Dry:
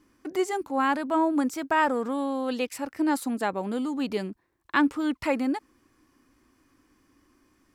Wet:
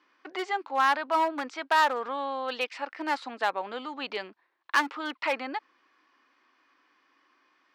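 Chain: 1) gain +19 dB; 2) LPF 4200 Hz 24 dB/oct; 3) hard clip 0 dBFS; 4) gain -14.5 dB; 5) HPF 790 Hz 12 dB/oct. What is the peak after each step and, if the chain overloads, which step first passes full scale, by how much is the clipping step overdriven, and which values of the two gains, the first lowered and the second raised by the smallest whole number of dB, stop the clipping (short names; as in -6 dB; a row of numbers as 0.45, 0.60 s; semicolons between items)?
+9.0, +9.0, 0.0, -14.5, -10.0 dBFS; step 1, 9.0 dB; step 1 +10 dB, step 4 -5.5 dB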